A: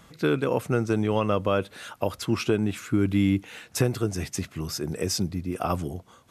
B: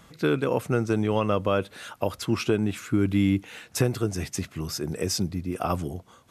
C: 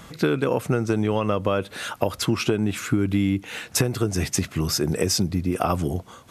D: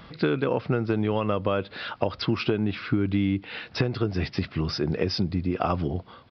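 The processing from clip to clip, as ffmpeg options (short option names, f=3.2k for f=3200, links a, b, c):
-af anull
-af "acompressor=threshold=-27dB:ratio=6,volume=9dB"
-af "aresample=11025,aresample=44100,volume=-2.5dB"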